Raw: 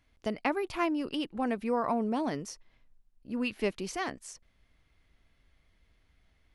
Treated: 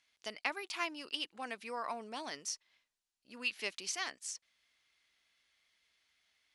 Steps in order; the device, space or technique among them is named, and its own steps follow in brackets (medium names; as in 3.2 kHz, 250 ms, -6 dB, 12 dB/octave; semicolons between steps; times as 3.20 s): piezo pickup straight into a mixer (low-pass 6.1 kHz 12 dB/octave; differentiator); trim +9.5 dB